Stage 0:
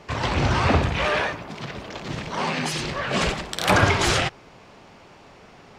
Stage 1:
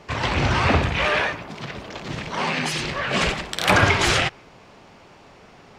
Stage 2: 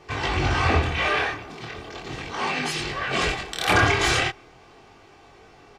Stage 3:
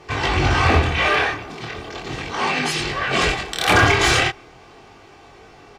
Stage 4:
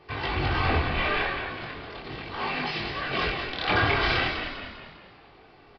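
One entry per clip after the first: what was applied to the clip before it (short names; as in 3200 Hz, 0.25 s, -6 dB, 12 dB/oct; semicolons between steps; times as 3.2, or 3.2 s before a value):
dynamic EQ 2300 Hz, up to +4 dB, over -38 dBFS, Q 1
comb 2.6 ms, depth 49%; chorus 0.38 Hz, delay 20 ms, depth 7.1 ms
one-sided clip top -14.5 dBFS; gain +5 dB
downsampling 11025 Hz; frequency-shifting echo 0.199 s, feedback 48%, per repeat -46 Hz, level -6.5 dB; gain -9 dB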